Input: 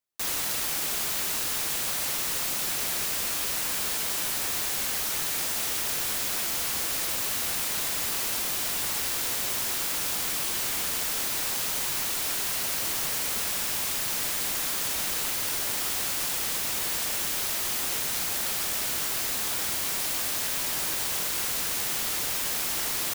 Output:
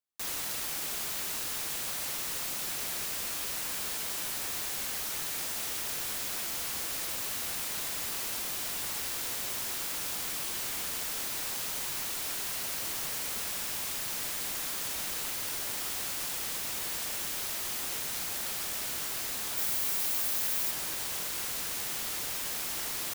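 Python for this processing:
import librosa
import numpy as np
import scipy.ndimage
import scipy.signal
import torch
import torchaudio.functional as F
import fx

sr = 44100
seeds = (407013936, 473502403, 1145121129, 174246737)

y = fx.high_shelf(x, sr, hz=12000.0, db=8.0, at=(19.57, 20.71))
y = y * librosa.db_to_amplitude(-6.0)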